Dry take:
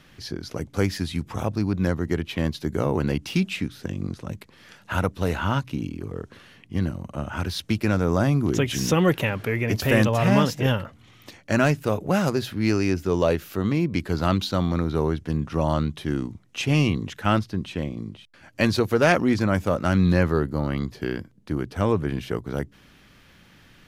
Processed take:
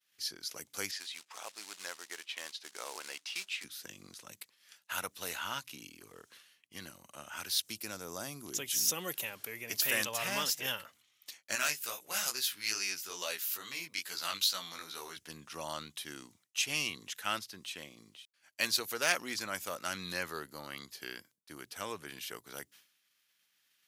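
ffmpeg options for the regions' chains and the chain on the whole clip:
-filter_complex "[0:a]asettb=1/sr,asplit=3[s0][s1][s2];[s0]atrim=end=0.914[s3];[s1]atrim=start=0.91:end=3.64,asetpts=PTS-STARTPTS,afade=t=in:d=0.004:c=qsin,afade=t=out:st=2.726:d=0.004:c=qsin,highshelf=f=5300:g=-11.5,acrusher=bits=5:mode=log:mix=0:aa=0.000001,highpass=560,lowpass=7500[s4];[s2]atrim=start=3.636[s5];[s3][s4]acrossfade=d=0.004:c1=hsin:c2=qsin[s6];[s6][s5]acrossfade=d=0.004:c1=qsin:c2=hsin,asettb=1/sr,asplit=3[s7][s8][s9];[s7]atrim=end=7.614[s10];[s8]atrim=start=7.61:end=9.71,asetpts=PTS-STARTPTS,afade=t=in:d=0.004:c=qsin,afade=t=out:st=2.096:d=0.004:c=qsin,equalizer=f=2000:t=o:w=2.2:g=-7.5,acompressor=mode=upward:threshold=0.00708:ratio=2.5:attack=3.2:release=140:knee=2.83:detection=peak[s11];[s9]atrim=start=9.706[s12];[s10][s11]acrossfade=d=0.004:c1=hsin:c2=qsin[s13];[s13][s12]acrossfade=d=0.004:c1=qsin:c2=hsin,asettb=1/sr,asplit=3[s14][s15][s16];[s14]atrim=end=11.554[s17];[s15]atrim=start=11.55:end=15.17,asetpts=PTS-STARTPTS,afade=t=in:d=0.004:c=qsin,afade=t=out:st=3.616:d=0.004:c=qsin,flanger=delay=15.5:depth=4.7:speed=2.3,tiltshelf=f=830:g=-6[s18];[s16]atrim=start=15.166[s19];[s17][s18]acrossfade=d=0.004:c1=hsin:c2=qsin[s20];[s20][s19]acrossfade=d=0.004:c1=qsin:c2=hsin,agate=range=0.0224:threshold=0.00794:ratio=3:detection=peak,aderivative,volume=1.58"

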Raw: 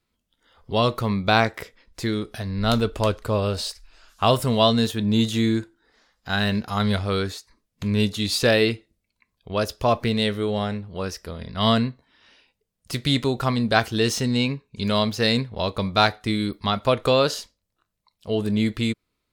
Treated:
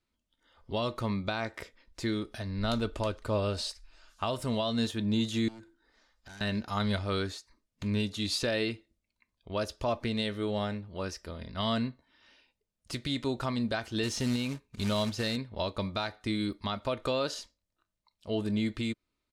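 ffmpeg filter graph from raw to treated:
-filter_complex "[0:a]asettb=1/sr,asplit=3[s0][s1][s2];[s0]atrim=end=5.484[s3];[s1]atrim=start=5.48:end=6.41,asetpts=PTS-STARTPTS,afade=t=in:d=0.004:c=qsin,afade=t=out:st=0.926:d=0.004:c=qsin,asubboost=boost=6.5:cutoff=66,acompressor=threshold=0.0141:ratio=4:attack=3.2:release=140:knee=1:detection=peak,aeval=exprs='0.015*(abs(mod(val(0)/0.015+3,4)-2)-1)':c=same[s4];[s2]atrim=start=6.406[s5];[s3][s4]acrossfade=d=0.004:c1=hsin:c2=qsin[s6];[s6][s5]acrossfade=d=0.004:c1=qsin:c2=hsin,asettb=1/sr,asplit=3[s7][s8][s9];[s7]atrim=end=14.034[s10];[s8]atrim=start=14.03:end=15.36,asetpts=PTS-STARTPTS,afade=t=in:d=0.004:c=qsin,afade=t=out:st=1.326:d=0.004:c=qsin,lowshelf=f=110:g=7.5,acrusher=bits=3:mode=log:mix=0:aa=0.000001[s11];[s9]atrim=start=15.356[s12];[s10][s11]acrossfade=d=0.004:c1=hsin:c2=qsin[s13];[s13][s12]acrossfade=d=0.004:c1=qsin:c2=hsin,lowpass=9700,aecho=1:1:3.3:0.3,alimiter=limit=0.211:level=0:latency=1:release=204,volume=0.473"

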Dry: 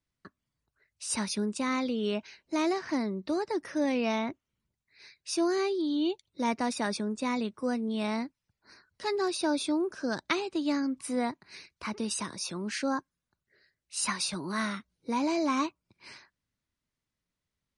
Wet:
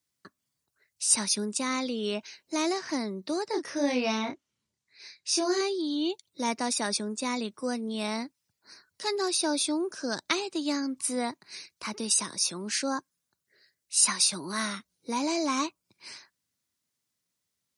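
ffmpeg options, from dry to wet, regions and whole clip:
-filter_complex "[0:a]asettb=1/sr,asplit=3[s0][s1][s2];[s0]atrim=end=3.484[s3];[s1]atrim=start=3.48:end=5.61,asetpts=PTS-STARTPTS,afade=t=in:d=0.004:c=qsin,afade=t=out:st=2.126:d=0.004:c=qsin,lowpass=7200,asplit=2[s4][s5];[s5]adelay=28,volume=0.668[s6];[s4][s6]amix=inputs=2:normalize=0,atrim=end_sample=93933[s7];[s2]atrim=start=5.606[s8];[s3][s7]acrossfade=d=0.004:c1=hsin:c2=qsin[s9];[s9][s8]acrossfade=d=0.004:c1=qsin:c2=hsin,highpass=100,bass=f=250:g=-3,treble=f=4000:g=11"

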